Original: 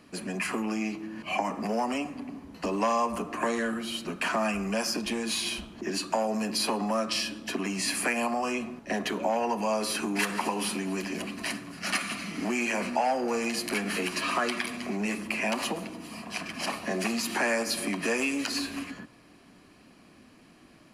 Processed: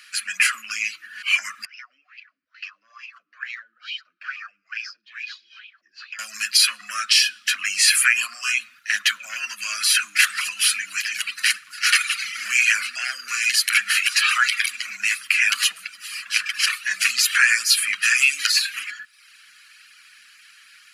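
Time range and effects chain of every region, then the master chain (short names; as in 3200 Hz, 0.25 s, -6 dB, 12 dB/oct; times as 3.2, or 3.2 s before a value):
1.65–6.19 resonant high shelf 7300 Hz -13.5 dB, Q 3 + wah 2.3 Hz 340–2600 Hz, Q 6.6 + compressor 2:1, threshold -44 dBFS
whole clip: reverb removal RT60 0.69 s; elliptic high-pass 1400 Hz, stop band 40 dB; maximiser +18.5 dB; gain -3 dB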